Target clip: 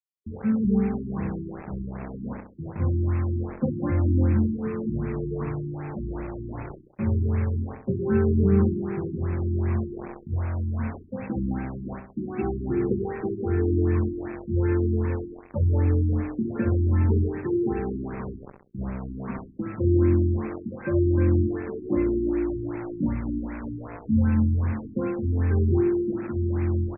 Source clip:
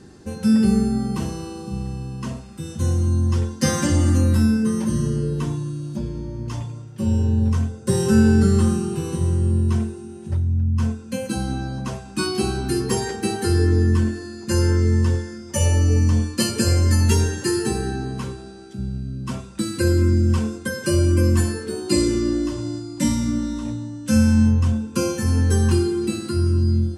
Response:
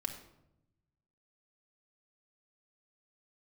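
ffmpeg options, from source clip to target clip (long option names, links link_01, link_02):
-filter_complex "[0:a]aphaser=in_gain=1:out_gain=1:delay=4.3:decay=0.24:speed=0.7:type=sinusoidal,acrusher=bits=4:mix=0:aa=0.000001,asplit=2[link_01][link_02];[link_02]adelay=66,lowpass=frequency=2000:poles=1,volume=-6dB,asplit=2[link_03][link_04];[link_04]adelay=66,lowpass=frequency=2000:poles=1,volume=0.42,asplit=2[link_05][link_06];[link_06]adelay=66,lowpass=frequency=2000:poles=1,volume=0.42,asplit=2[link_07][link_08];[link_08]adelay=66,lowpass=frequency=2000:poles=1,volume=0.42,asplit=2[link_09][link_10];[link_10]adelay=66,lowpass=frequency=2000:poles=1,volume=0.42[link_11];[link_03][link_05][link_07][link_09][link_11]amix=inputs=5:normalize=0[link_12];[link_01][link_12]amix=inputs=2:normalize=0,afftfilt=real='re*lt(b*sr/1024,370*pow(2700/370,0.5+0.5*sin(2*PI*2.6*pts/sr)))':imag='im*lt(b*sr/1024,370*pow(2700/370,0.5+0.5*sin(2*PI*2.6*pts/sr)))':win_size=1024:overlap=0.75,volume=-5.5dB"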